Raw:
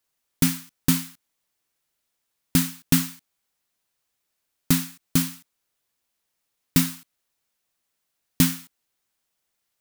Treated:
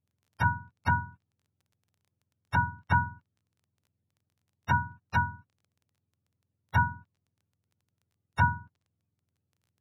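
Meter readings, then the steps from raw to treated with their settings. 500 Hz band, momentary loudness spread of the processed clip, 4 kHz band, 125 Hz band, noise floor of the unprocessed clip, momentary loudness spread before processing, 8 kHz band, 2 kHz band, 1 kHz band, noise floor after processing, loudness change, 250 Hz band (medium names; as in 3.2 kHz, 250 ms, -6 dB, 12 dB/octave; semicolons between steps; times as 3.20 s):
-6.0 dB, 12 LU, -19.0 dB, -3.0 dB, -79 dBFS, 10 LU, under -30 dB, +6.5 dB, +14.5 dB, -84 dBFS, -6.0 dB, -15.5 dB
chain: spectrum inverted on a logarithmic axis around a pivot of 500 Hz; crackle 16 per s -53 dBFS; low-pass that closes with the level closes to 1.4 kHz, closed at -25 dBFS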